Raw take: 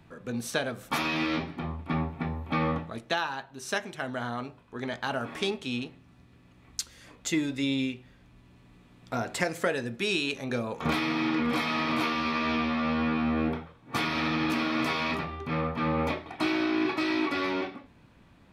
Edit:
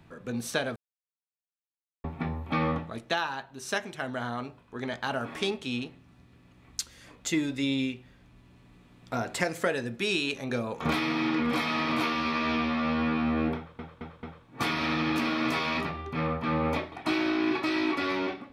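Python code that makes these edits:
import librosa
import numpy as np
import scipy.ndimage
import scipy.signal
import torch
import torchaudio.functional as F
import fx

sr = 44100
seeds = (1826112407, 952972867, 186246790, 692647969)

y = fx.edit(x, sr, fx.silence(start_s=0.76, length_s=1.28),
    fx.stutter(start_s=13.57, slice_s=0.22, count=4), tone=tone)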